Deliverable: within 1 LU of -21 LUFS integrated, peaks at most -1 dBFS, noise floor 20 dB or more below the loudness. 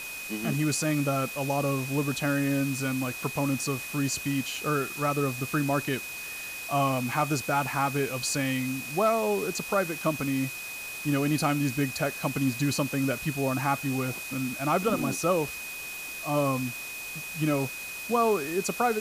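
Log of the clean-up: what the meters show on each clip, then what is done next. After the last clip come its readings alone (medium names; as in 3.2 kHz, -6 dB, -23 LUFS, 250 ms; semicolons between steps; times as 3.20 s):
steady tone 2.5 kHz; tone level -37 dBFS; noise floor -38 dBFS; noise floor target -49 dBFS; loudness -28.5 LUFS; peak level -13.0 dBFS; loudness target -21.0 LUFS
-> band-stop 2.5 kHz, Q 30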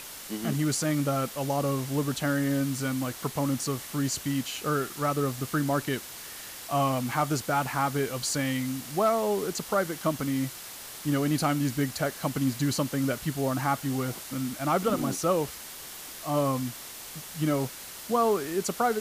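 steady tone not found; noise floor -42 dBFS; noise floor target -49 dBFS
-> noise reduction 7 dB, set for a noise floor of -42 dBFS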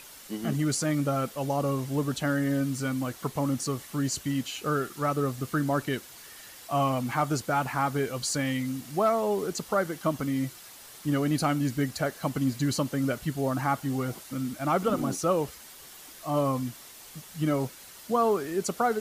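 noise floor -48 dBFS; noise floor target -49 dBFS
-> noise reduction 6 dB, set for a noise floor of -48 dBFS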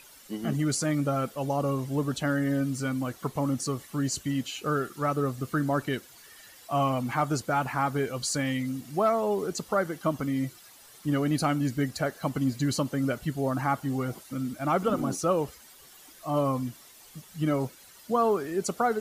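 noise floor -52 dBFS; loudness -29.0 LUFS; peak level -14.0 dBFS; loudness target -21.0 LUFS
-> trim +8 dB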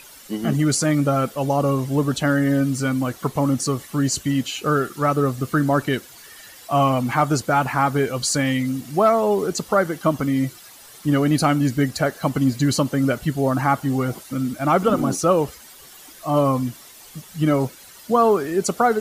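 loudness -21.0 LUFS; peak level -6.0 dBFS; noise floor -44 dBFS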